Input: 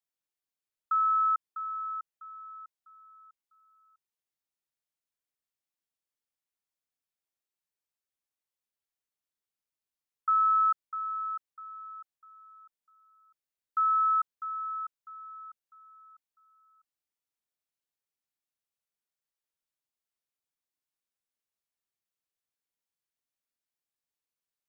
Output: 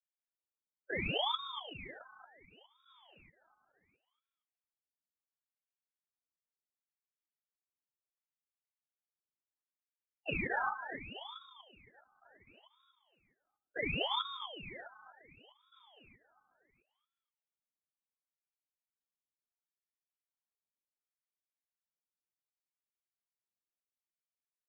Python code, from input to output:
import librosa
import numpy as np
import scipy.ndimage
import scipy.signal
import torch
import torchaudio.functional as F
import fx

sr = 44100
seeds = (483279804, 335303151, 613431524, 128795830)

y = fx.spec_quant(x, sr, step_db=15)
y = fx.level_steps(y, sr, step_db=14)
y = scipy.signal.sosfilt(scipy.signal.butter(4, 1200.0, 'lowpass', fs=sr, output='sos'), y)
y = fx.echo_feedback(y, sr, ms=237, feedback_pct=27, wet_db=-10)
y = fx.lpc_vocoder(y, sr, seeds[0], excitation='whisper', order=10)
y = fx.formant_shift(y, sr, semitones=-4)
y = fx.ring_lfo(y, sr, carrier_hz=1300.0, swing_pct=85, hz=0.7)